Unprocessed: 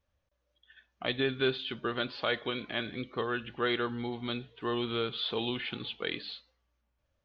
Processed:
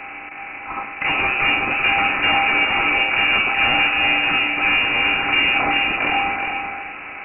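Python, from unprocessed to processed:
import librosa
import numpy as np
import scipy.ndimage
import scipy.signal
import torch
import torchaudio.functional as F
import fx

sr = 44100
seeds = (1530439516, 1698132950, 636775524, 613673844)

p1 = fx.bin_compress(x, sr, power=0.4)
p2 = scipy.signal.sosfilt(scipy.signal.butter(2, 130.0, 'highpass', fs=sr, output='sos'), p1)
p3 = fx.low_shelf(p2, sr, hz=170.0, db=11.0)
p4 = fx.small_body(p3, sr, hz=(770.0, 2000.0), ring_ms=45, db=12)
p5 = fx.fold_sine(p4, sr, drive_db=14, ceiling_db=-7.5)
p6 = fx.comb_fb(p5, sr, f0_hz=500.0, decay_s=0.36, harmonics='all', damping=0.0, mix_pct=80)
p7 = p6 + fx.echo_feedback(p6, sr, ms=380, feedback_pct=26, wet_db=-5.5, dry=0)
p8 = fx.freq_invert(p7, sr, carrier_hz=2800)
y = F.gain(torch.from_numpy(p8), 5.0).numpy()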